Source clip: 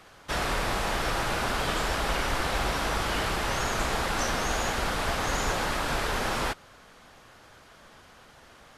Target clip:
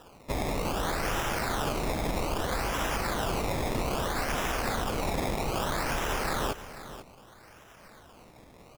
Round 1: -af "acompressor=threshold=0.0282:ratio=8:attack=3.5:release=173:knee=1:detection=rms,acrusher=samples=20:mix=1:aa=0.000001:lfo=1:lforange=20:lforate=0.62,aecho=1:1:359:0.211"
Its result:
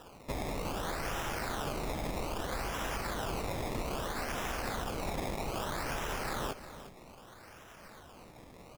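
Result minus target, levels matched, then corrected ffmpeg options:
compression: peak gain reduction +6 dB; echo 131 ms early
-af "acompressor=threshold=0.0631:ratio=8:attack=3.5:release=173:knee=1:detection=rms,acrusher=samples=20:mix=1:aa=0.000001:lfo=1:lforange=20:lforate=0.62,aecho=1:1:490:0.211"

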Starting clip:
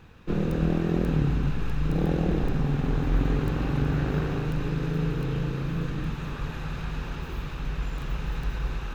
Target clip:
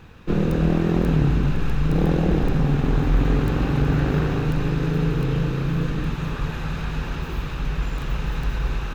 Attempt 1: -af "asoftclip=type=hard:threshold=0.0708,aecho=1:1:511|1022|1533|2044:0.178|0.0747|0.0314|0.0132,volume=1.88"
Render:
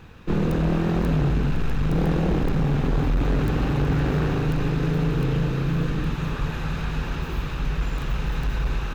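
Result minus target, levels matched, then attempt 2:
hard clipper: distortion +11 dB
-af "asoftclip=type=hard:threshold=0.141,aecho=1:1:511|1022|1533|2044:0.178|0.0747|0.0314|0.0132,volume=1.88"

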